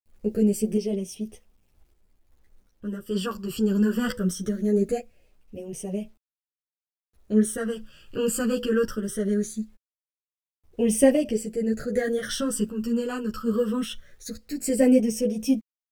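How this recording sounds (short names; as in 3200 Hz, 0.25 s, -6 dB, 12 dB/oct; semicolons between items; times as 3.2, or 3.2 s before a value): phasing stages 12, 0.21 Hz, lowest notch 660–1400 Hz; a quantiser's noise floor 12-bit, dither none; random-step tremolo 2.6 Hz; a shimmering, thickened sound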